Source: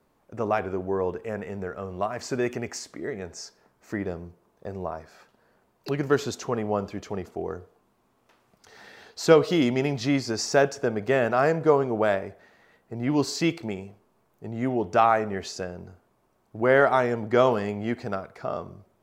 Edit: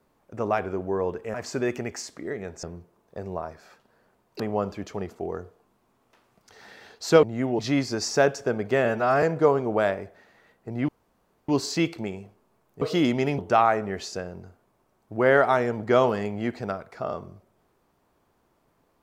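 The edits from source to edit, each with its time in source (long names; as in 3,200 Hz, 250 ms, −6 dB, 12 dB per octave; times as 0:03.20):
0:01.34–0:02.11: remove
0:03.40–0:04.12: remove
0:05.89–0:06.56: remove
0:09.39–0:09.96: swap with 0:14.46–0:14.82
0:11.22–0:11.47: time-stretch 1.5×
0:13.13: splice in room tone 0.60 s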